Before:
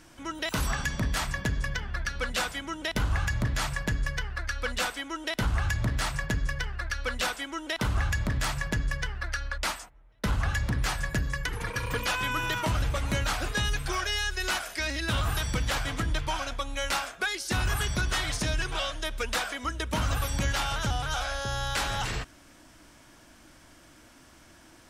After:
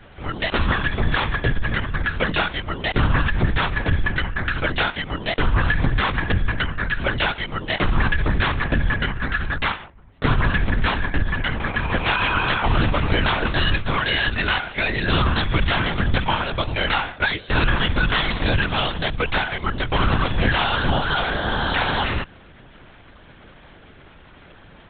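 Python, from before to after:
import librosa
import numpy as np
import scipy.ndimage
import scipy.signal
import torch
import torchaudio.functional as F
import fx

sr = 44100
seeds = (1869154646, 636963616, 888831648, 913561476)

y = fx.lpc_vocoder(x, sr, seeds[0], excitation='whisper', order=10)
y = F.gain(torch.from_numpy(y), 9.0).numpy()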